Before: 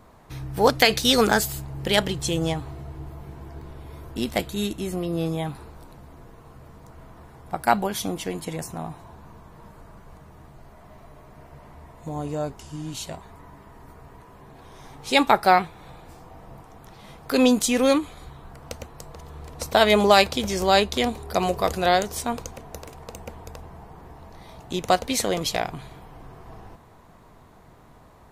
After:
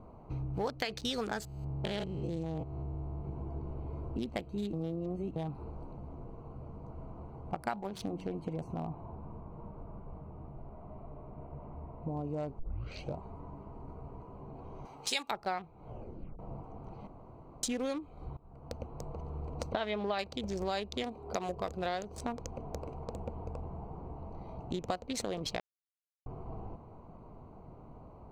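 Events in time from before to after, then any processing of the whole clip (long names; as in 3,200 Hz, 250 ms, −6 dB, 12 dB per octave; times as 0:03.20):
0:01.45–0:03.25: spectrum averaged block by block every 200 ms
0:04.73–0:05.36: reverse
0:07.70–0:08.30: hum removal 92.78 Hz, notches 11
0:08.86–0:12.09: low-pass filter 2,800 Hz
0:12.59: tape start 0.58 s
0:14.85–0:15.31: spectral tilt +4 dB per octave
0:15.84: tape stop 0.55 s
0:17.07–0:17.63: fill with room tone
0:18.37–0:18.99: fade in, from −22 dB
0:19.72–0:20.19: Butterworth low-pass 4,000 Hz
0:21.03–0:21.49: low-shelf EQ 140 Hz −12 dB
0:25.60–0:26.26: silence
whole clip: adaptive Wiener filter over 25 samples; parametric band 12,000 Hz −12 dB 0.66 octaves; downward compressor 5 to 1, threshold −35 dBFS; level +1 dB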